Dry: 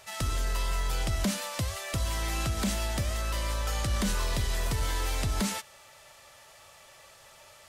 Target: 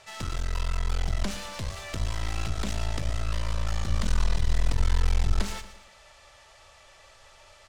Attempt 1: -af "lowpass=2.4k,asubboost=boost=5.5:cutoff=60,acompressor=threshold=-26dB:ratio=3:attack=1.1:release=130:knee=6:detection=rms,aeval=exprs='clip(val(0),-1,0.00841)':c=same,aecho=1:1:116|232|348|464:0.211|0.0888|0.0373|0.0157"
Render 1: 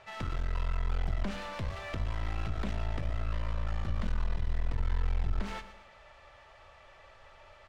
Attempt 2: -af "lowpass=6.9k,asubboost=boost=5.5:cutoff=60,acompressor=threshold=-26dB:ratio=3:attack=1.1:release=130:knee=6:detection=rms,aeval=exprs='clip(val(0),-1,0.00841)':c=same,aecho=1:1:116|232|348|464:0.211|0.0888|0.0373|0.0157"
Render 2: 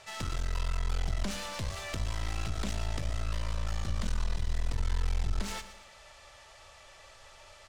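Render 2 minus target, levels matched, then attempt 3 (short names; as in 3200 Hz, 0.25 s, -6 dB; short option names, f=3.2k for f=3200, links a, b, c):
compressor: peak gain reduction +9 dB
-af "lowpass=6.9k,asubboost=boost=5.5:cutoff=60,aeval=exprs='clip(val(0),-1,0.00841)':c=same,aecho=1:1:116|232|348|464:0.211|0.0888|0.0373|0.0157"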